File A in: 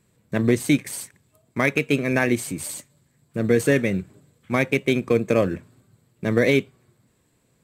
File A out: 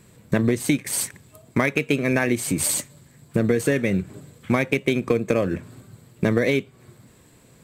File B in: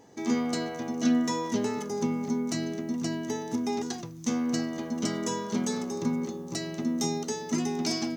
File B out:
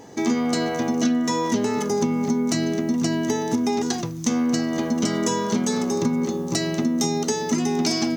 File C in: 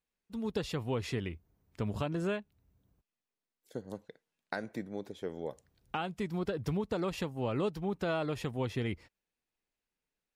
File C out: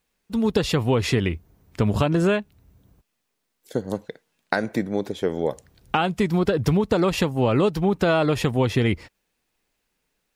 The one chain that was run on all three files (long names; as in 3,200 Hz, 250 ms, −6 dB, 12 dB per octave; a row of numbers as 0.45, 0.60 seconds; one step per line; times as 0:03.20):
downward compressor 6 to 1, threshold −30 dBFS
loudness normalisation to −23 LKFS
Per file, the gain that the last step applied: +12.0, +11.5, +15.0 decibels